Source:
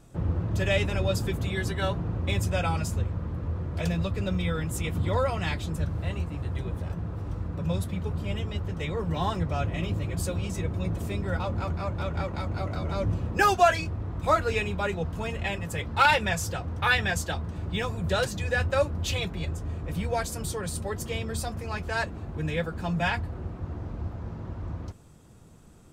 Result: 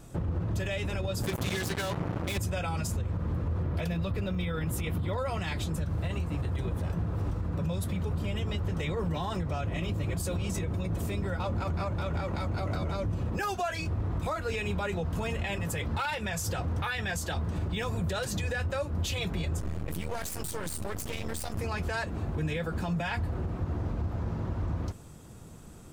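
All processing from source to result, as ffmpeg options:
ffmpeg -i in.wav -filter_complex "[0:a]asettb=1/sr,asplit=3[link_01][link_02][link_03];[link_01]atrim=end=1.234[link_04];[link_02]atrim=start=1.23:end=2.38,asetpts=PTS-STARTPTS,afade=type=in:duration=0.004:curve=qsin,afade=type=out:start_time=1.146:duration=0.004:curve=qsin,highpass=100,acrusher=bits=4:mix=0:aa=0.5[link_05];[link_03]atrim=start=2.376[link_06];[link_04][link_05]acrossfade=duration=0.004:curve1=hsin:curve2=qsin[link_07];[link_07][link_06]acrossfade=duration=0.004:curve1=qsin:curve2=hsin,asettb=1/sr,asplit=3[link_08][link_09][link_10];[link_08]atrim=end=3.634[link_11];[link_09]atrim=start=3.63:end=5.18,asetpts=PTS-STARTPTS,afade=type=in:duration=0.004:curve=qsin,afade=type=out:start_time=1.546:duration=0.004:curve=qsin,equalizer=frequency=7100:width=1.3:gain=-7.5,bandreject=frequency=8000:width=29[link_12];[link_10]atrim=start=5.176[link_13];[link_11][link_12]acrossfade=duration=0.004:curve1=hsin:curve2=qsin[link_14];[link_14][link_13]acrossfade=duration=0.004:curve1=qsin:curve2=hsin,asettb=1/sr,asplit=3[link_15][link_16][link_17];[link_15]atrim=end=19.604[link_18];[link_16]atrim=start=19.6:end=21.58,asetpts=PTS-STARTPTS,afade=type=in:duration=0.004:curve=qsin,afade=type=out:start_time=1.976:duration=0.004:curve=qsin,highshelf=frequency=7400:gain=7,aeval=exprs='max(val(0),0)':channel_layout=same[link_19];[link_17]atrim=start=21.576[link_20];[link_18][link_19]acrossfade=duration=0.004:curve1=hsin:curve2=qsin[link_21];[link_21][link_20]acrossfade=duration=0.004:curve1=qsin:curve2=hsin,highshelf=frequency=10000:gain=5.5,acompressor=threshold=-29dB:ratio=10,alimiter=level_in=4dB:limit=-24dB:level=0:latency=1:release=36,volume=-4dB,volume=4.5dB" out.wav

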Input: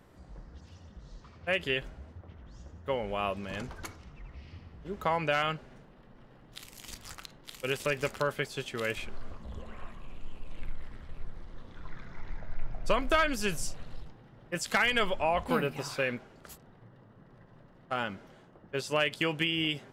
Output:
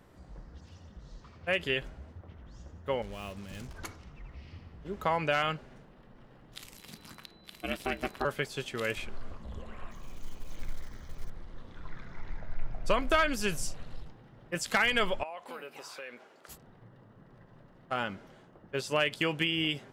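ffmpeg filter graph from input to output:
ffmpeg -i in.wav -filter_complex "[0:a]asettb=1/sr,asplit=3[link_01][link_02][link_03];[link_01]atrim=end=3.024[link_04];[link_02]atrim=start=3.02:end=3.75,asetpts=PTS-STARTPTS,afade=type=in:duration=0.004:curve=qsin,afade=type=out:start_time=0.726:duration=0.004:curve=qsin,equalizer=frequency=970:width=0.35:gain=-13.5,acrusher=bits=7:mix=0:aa=0.5[link_05];[link_03]atrim=start=3.746[link_06];[link_04][link_05]acrossfade=duration=0.004:curve1=hsin:curve2=qsin[link_07];[link_07][link_06]acrossfade=duration=0.004:curve1=qsin:curve2=hsin,asettb=1/sr,asplit=3[link_08][link_09][link_10];[link_08]atrim=end=6.774[link_11];[link_09]atrim=start=6.77:end=8.25,asetpts=PTS-STARTPTS,afade=type=in:duration=0.004:curve=qsin,afade=type=out:start_time=1.476:duration=0.004:curve=qsin,equalizer=frequency=6900:width=1.9:gain=-8,aeval=exprs='val(0)*sin(2*PI*190*n/s)':channel_layout=same,aeval=exprs='val(0)+0.000794*sin(2*PI*4000*n/s)':channel_layout=same[link_12];[link_10]atrim=start=8.246[link_13];[link_11][link_12]acrossfade=duration=0.004:curve1=hsin:curve2=qsin[link_14];[link_14][link_13]acrossfade=duration=0.004:curve1=qsin:curve2=hsin,asettb=1/sr,asplit=3[link_15][link_16][link_17];[link_15]atrim=end=9.914[link_18];[link_16]atrim=start=9.91:end=11.3,asetpts=PTS-STARTPTS,afade=type=in:duration=0.004:curve=qsin,afade=type=out:start_time=1.386:duration=0.004:curve=qsin,lowpass=frequency=6300:width_type=q:width=6.6,acrusher=bits=7:mode=log:mix=0:aa=0.000001,bandreject=frequency=2700:width=7.9[link_19];[link_17]atrim=start=11.296[link_20];[link_18][link_19]acrossfade=duration=0.004:curve1=hsin:curve2=qsin[link_21];[link_21][link_20]acrossfade=duration=0.004:curve1=qsin:curve2=hsin,asettb=1/sr,asplit=3[link_22][link_23][link_24];[link_22]atrim=end=15.234[link_25];[link_23]atrim=start=15.23:end=16.49,asetpts=PTS-STARTPTS,afade=type=in:duration=0.004:curve=qsin,afade=type=out:start_time=1.256:duration=0.004:curve=qsin,highpass=410,acompressor=threshold=-45dB:ratio=2.5:attack=3.2:release=140:knee=1:detection=peak[link_26];[link_24]atrim=start=16.486[link_27];[link_25][link_26]acrossfade=duration=0.004:curve1=hsin:curve2=qsin[link_28];[link_28][link_27]acrossfade=duration=0.004:curve1=qsin:curve2=hsin" out.wav

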